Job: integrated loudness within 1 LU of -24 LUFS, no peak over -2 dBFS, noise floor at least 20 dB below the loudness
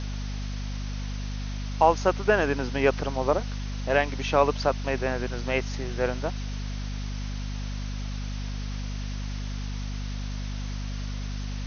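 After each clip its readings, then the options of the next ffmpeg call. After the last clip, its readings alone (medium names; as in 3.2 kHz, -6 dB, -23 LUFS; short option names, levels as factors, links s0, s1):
hum 50 Hz; highest harmonic 250 Hz; hum level -29 dBFS; noise floor -32 dBFS; noise floor target -49 dBFS; loudness -29.0 LUFS; peak level -6.5 dBFS; loudness target -24.0 LUFS
-> -af "bandreject=f=50:t=h:w=6,bandreject=f=100:t=h:w=6,bandreject=f=150:t=h:w=6,bandreject=f=200:t=h:w=6,bandreject=f=250:t=h:w=6"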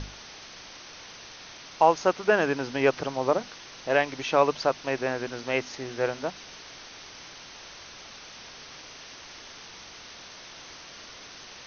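hum not found; noise floor -46 dBFS; noise floor target -47 dBFS
-> -af "afftdn=nr=6:nf=-46"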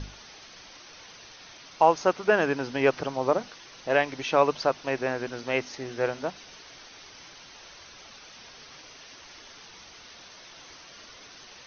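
noise floor -49 dBFS; loudness -26.5 LUFS; peak level -6.5 dBFS; loudness target -24.0 LUFS
-> -af "volume=1.33"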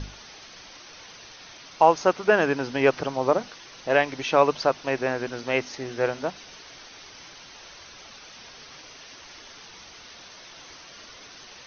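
loudness -24.0 LUFS; peak level -4.0 dBFS; noise floor -47 dBFS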